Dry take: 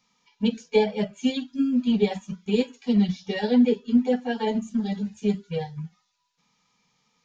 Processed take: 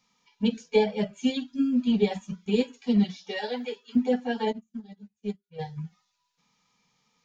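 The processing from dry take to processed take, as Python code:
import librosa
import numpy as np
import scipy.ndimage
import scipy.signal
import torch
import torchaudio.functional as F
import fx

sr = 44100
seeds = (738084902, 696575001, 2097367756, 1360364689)

y = fx.highpass(x, sr, hz=fx.line((3.03, 290.0), (3.95, 1100.0)), slope=12, at=(3.03, 3.95), fade=0.02)
y = fx.upward_expand(y, sr, threshold_db=-38.0, expansion=2.5, at=(4.51, 5.58), fade=0.02)
y = y * librosa.db_to_amplitude(-1.5)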